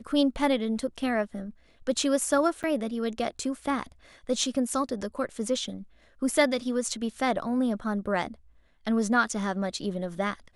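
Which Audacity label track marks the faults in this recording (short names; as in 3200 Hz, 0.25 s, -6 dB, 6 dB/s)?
2.630000	2.640000	gap 7.8 ms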